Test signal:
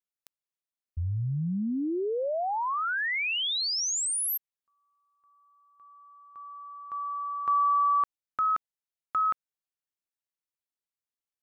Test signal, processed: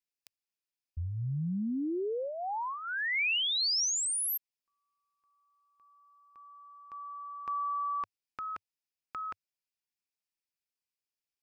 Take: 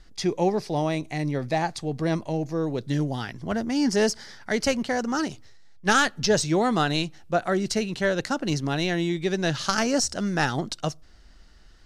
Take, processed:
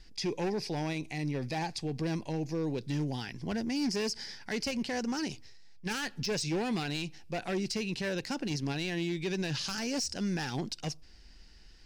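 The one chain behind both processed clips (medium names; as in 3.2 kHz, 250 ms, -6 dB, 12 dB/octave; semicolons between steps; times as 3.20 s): overload inside the chain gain 20.5 dB; graphic EQ with 31 bands 100 Hz -4 dB, 630 Hz -7 dB, 1.25 kHz -10 dB, 2.5 kHz +7 dB, 5 kHz +8 dB; peak limiter -23 dBFS; trim -3 dB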